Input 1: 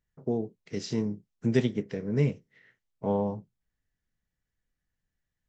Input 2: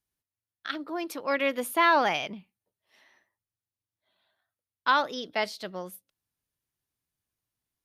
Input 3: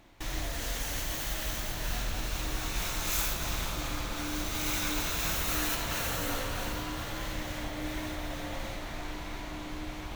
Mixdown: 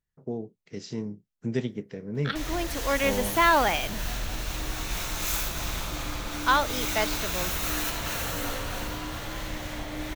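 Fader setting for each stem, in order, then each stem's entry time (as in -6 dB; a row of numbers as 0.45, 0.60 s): -4.0, +1.0, +1.5 dB; 0.00, 1.60, 2.15 s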